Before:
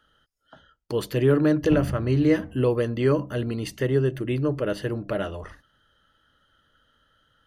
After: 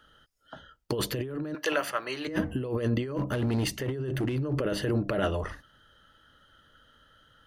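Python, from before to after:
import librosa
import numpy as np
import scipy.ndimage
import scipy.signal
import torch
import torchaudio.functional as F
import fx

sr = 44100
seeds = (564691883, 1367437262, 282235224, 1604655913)

y = fx.highpass(x, sr, hz=930.0, slope=12, at=(1.53, 2.27), fade=0.02)
y = fx.over_compress(y, sr, threshold_db=-29.0, ratio=-1.0)
y = fx.clip_asym(y, sr, top_db=-25.5, bottom_db=-20.5, at=(3.03, 4.53))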